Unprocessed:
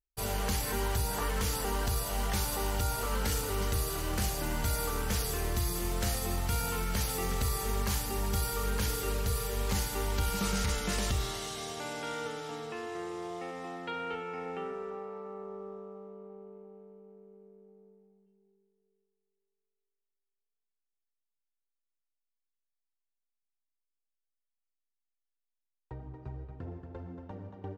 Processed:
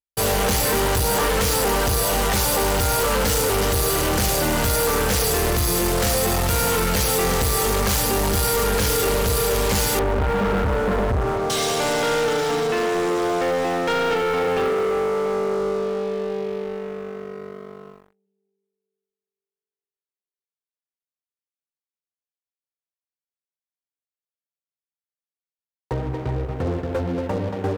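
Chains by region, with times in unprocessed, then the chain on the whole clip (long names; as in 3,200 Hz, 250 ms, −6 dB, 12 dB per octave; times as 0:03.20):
0:09.99–0:11.50: Butterworth low-pass 1,400 Hz + notch comb filter 170 Hz
whole clip: high-pass filter 82 Hz 6 dB per octave; parametric band 510 Hz +8.5 dB 0.34 octaves; leveller curve on the samples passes 5; level +2 dB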